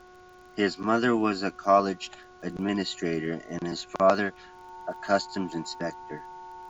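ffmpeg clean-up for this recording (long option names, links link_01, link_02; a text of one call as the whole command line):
ffmpeg -i in.wav -af "adeclick=threshold=4,bandreject=frequency=364.9:width_type=h:width=4,bandreject=frequency=729.8:width_type=h:width=4,bandreject=frequency=1094.7:width_type=h:width=4,bandreject=frequency=1459.6:width_type=h:width=4,bandreject=frequency=900:width=30,agate=range=-21dB:threshold=-43dB" out.wav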